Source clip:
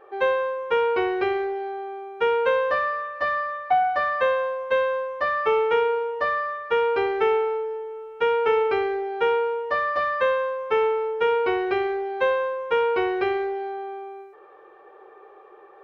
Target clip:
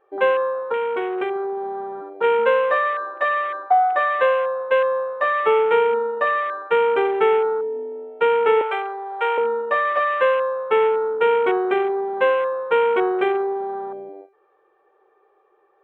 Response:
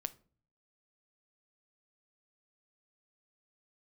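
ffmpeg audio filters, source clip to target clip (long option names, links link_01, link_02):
-filter_complex "[0:a]afwtdn=0.0355,asettb=1/sr,asplit=3[link_01][link_02][link_03];[link_01]atrim=end=0.584[link_04];[link_02]atrim=start=0.58:end=2.24,asetpts=PTS-STARTPTS,afade=type=in:duration=0.004:curve=qsin,afade=type=out:start_time=1.656:duration=0.004:curve=qsin,acompressor=threshold=-27dB:ratio=2.5[link_05];[link_03]atrim=start=2.236[link_06];[link_04][link_05]acrossfade=duration=0.004:curve1=hsin:curve2=qsin[link_07];[link_07][link_06]acrossfade=duration=0.004:curve1=qsin:curve2=hsin,asettb=1/sr,asplit=3[link_08][link_09][link_10];[link_08]atrim=end=8.614[link_11];[link_09]atrim=start=8.61:end=9.38,asetpts=PTS-STARTPTS,afade=type=in:duration=0.004:curve=qsin,afade=type=out:start_time=0.766:duration=0.004:curve=qsin,highpass=frequency=560:width=0.5412,highpass=frequency=560:width=1.3066[link_12];[link_10]atrim=start=9.376[link_13];[link_11][link_12]acrossfade=duration=0.004:curve1=hsin:curve2=qsin[link_14];[link_14][link_13]acrossfade=duration=0.004:curve1=qsin:curve2=hsin,volume=4dB"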